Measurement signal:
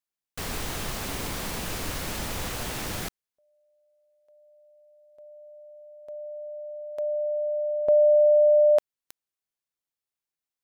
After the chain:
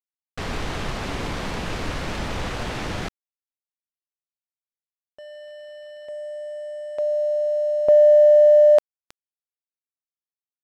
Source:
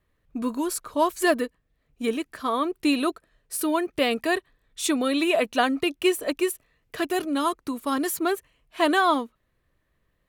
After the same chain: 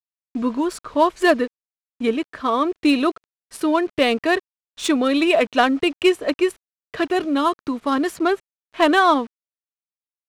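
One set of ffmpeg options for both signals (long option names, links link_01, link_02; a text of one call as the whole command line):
ffmpeg -i in.wav -af "acrusher=bits=7:mix=0:aa=0.000001,aresample=32000,aresample=44100,adynamicsmooth=sensitivity=2.5:basefreq=3600,volume=5.5dB" out.wav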